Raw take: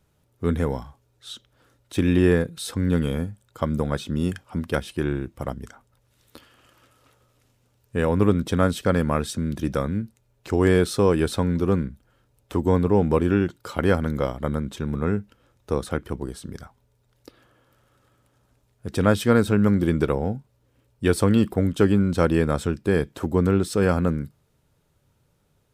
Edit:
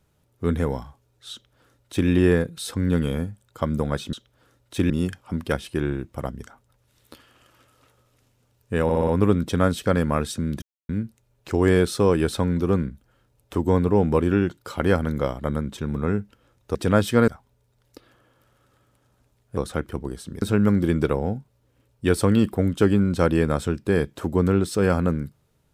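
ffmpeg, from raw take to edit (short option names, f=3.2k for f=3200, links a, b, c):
-filter_complex "[0:a]asplit=13[a][b][c][d][e][f][g][h][i][j][k][l][m];[a]atrim=end=4.132[n];[b]atrim=start=1.318:end=2.092[o];[c]atrim=start=4.128:end=8.132[p];[d]atrim=start=8.068:end=8.132[q];[e]atrim=start=8.068:end=8.132[r];[f]atrim=start=8.068:end=8.132[s];[g]atrim=start=8.068:end=9.61,asetpts=PTS-STARTPTS,afade=t=out:st=1.538:d=0.004:c=hsin[t];[h]atrim=start=9.61:end=9.88,asetpts=PTS-STARTPTS,volume=0[u];[i]atrim=start=9.88:end=15.742,asetpts=PTS-STARTPTS,afade=t=in:d=0.004:c=hsin[v];[j]atrim=start=18.878:end=19.412[w];[k]atrim=start=16.588:end=18.882[x];[l]atrim=start=15.738:end=16.592[y];[m]atrim=start=19.408[z];[n][o]acrossfade=d=0.004:c1=hsin:c2=hsin[aa];[aa][p]acrossfade=d=0.004:c1=hsin:c2=hsin[ab];[ab][q]acrossfade=d=0.004:c1=hsin:c2=hsin[ac];[ac][r]acrossfade=d=0.004:c1=hsin:c2=hsin[ad];[ad][s]acrossfade=d=0.004:c1=hsin:c2=hsin[ae];[t][u][v]concat=n=3:v=0:a=1[af];[ae][af]acrossfade=d=0.004:c1=hsin:c2=hsin[ag];[ag][w]acrossfade=d=0.004:c1=hsin:c2=hsin[ah];[ah][x]acrossfade=d=0.004:c1=hsin:c2=hsin[ai];[ai][y]acrossfade=d=0.004:c1=hsin:c2=hsin[aj];[aj][z]acrossfade=d=0.004:c1=hsin:c2=hsin"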